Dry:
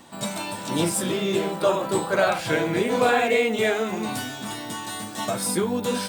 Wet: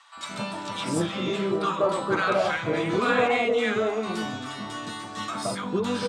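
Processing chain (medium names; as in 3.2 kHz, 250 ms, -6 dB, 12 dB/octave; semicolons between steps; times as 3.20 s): low-pass 5.6 kHz 12 dB/octave; peaking EQ 1.2 kHz +10 dB 0.36 oct; bands offset in time highs, lows 170 ms, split 980 Hz; trim -2 dB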